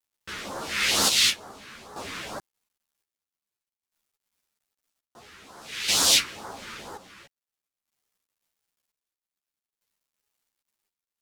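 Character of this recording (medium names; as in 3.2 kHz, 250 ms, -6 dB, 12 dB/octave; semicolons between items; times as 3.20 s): phasing stages 2, 2.2 Hz, lowest notch 680–2400 Hz; a quantiser's noise floor 12-bit, dither none; chopped level 0.51 Hz, depth 65%, duty 55%; a shimmering, thickened sound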